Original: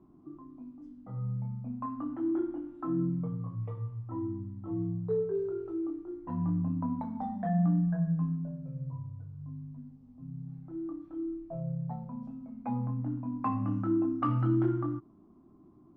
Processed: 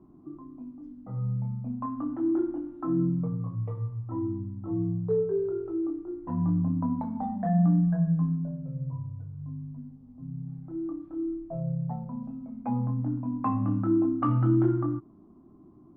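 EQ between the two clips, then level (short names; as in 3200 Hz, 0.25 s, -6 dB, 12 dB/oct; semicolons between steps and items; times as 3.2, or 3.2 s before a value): high shelf 2300 Hz -12 dB; +4.5 dB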